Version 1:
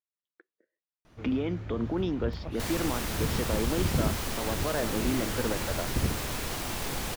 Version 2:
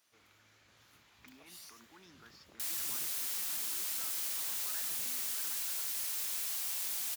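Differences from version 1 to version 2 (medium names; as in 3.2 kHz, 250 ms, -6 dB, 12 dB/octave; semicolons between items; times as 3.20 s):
speech: add static phaser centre 1.3 kHz, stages 4; first sound: entry -1.05 s; master: add differentiator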